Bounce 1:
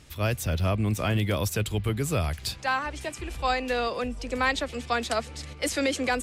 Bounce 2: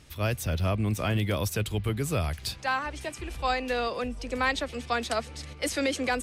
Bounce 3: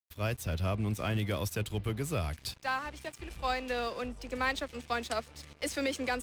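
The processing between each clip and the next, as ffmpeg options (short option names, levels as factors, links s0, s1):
-af "bandreject=f=7300:w=16,volume=0.841"
-af "aeval=exprs='sgn(val(0))*max(abs(val(0))-0.00596,0)':c=same,volume=0.631"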